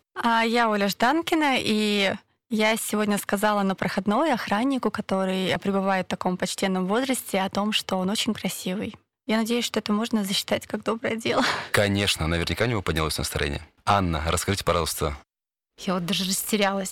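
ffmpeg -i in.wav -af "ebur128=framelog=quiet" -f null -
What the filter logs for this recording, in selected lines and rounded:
Integrated loudness:
  I:         -24.3 LUFS
  Threshold: -34.5 LUFS
Loudness range:
  LRA:         2.9 LU
  Threshold: -44.7 LUFS
  LRA low:   -26.0 LUFS
  LRA high:  -23.1 LUFS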